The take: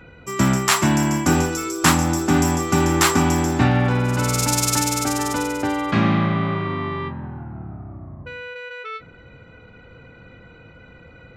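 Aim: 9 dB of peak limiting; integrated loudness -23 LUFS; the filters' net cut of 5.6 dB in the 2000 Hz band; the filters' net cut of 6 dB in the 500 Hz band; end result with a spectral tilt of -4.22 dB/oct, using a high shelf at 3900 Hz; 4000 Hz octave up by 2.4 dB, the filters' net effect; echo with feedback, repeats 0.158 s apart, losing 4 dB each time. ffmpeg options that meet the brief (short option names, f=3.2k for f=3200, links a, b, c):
-af "equalizer=f=500:t=o:g=-8.5,equalizer=f=2k:t=o:g=-8.5,highshelf=f=3.9k:g=3.5,equalizer=f=4k:t=o:g=3,alimiter=limit=-11dB:level=0:latency=1,aecho=1:1:158|316|474|632|790|948|1106|1264|1422:0.631|0.398|0.25|0.158|0.0994|0.0626|0.0394|0.0249|0.0157,volume=-3.5dB"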